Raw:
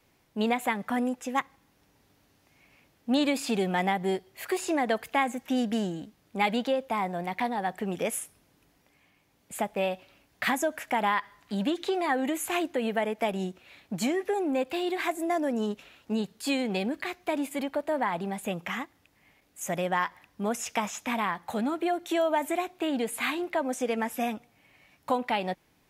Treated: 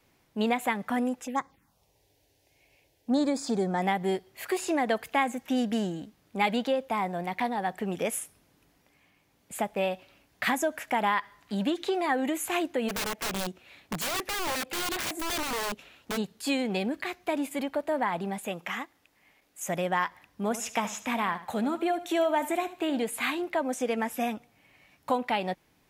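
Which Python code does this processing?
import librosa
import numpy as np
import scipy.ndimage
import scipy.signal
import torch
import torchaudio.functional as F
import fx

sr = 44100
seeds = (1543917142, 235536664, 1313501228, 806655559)

y = fx.env_phaser(x, sr, low_hz=200.0, high_hz=2800.0, full_db=-27.0, at=(1.25, 3.82))
y = fx.overflow_wrap(y, sr, gain_db=26.5, at=(12.88, 16.16), fade=0.02)
y = fx.peak_eq(y, sr, hz=87.0, db=-9.0, octaves=2.7, at=(18.38, 19.69))
y = fx.echo_feedback(y, sr, ms=75, feedback_pct=29, wet_db=-14, at=(20.43, 23.03))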